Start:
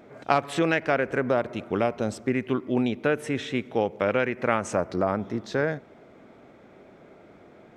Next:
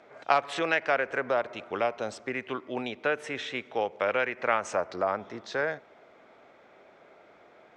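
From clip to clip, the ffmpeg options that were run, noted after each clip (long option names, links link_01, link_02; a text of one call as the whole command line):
ffmpeg -i in.wav -filter_complex "[0:a]acrossover=split=490 7700:gain=0.178 1 0.0631[link_01][link_02][link_03];[link_01][link_02][link_03]amix=inputs=3:normalize=0" out.wav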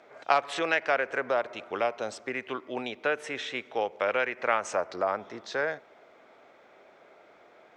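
ffmpeg -i in.wav -af "bass=frequency=250:gain=-5,treble=frequency=4000:gain=2" out.wav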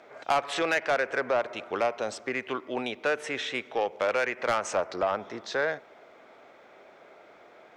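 ffmpeg -i in.wav -af "asoftclip=type=tanh:threshold=-20.5dB,volume=3dB" out.wav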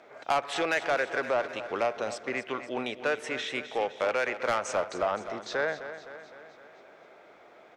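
ffmpeg -i in.wav -af "aecho=1:1:257|514|771|1028|1285|1542:0.251|0.143|0.0816|0.0465|0.0265|0.0151,volume=-1.5dB" out.wav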